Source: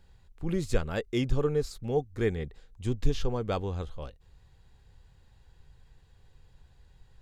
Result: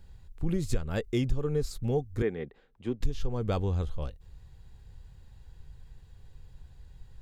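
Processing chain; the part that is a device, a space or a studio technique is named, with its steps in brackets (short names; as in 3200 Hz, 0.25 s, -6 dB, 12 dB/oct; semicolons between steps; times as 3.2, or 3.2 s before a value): 2.22–3.01 three-band isolator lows -23 dB, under 200 Hz, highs -22 dB, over 3200 Hz; ASMR close-microphone chain (low shelf 240 Hz +8 dB; compressor 4:1, threshold -24 dBFS, peak gain reduction 13 dB; high shelf 8100 Hz +6 dB)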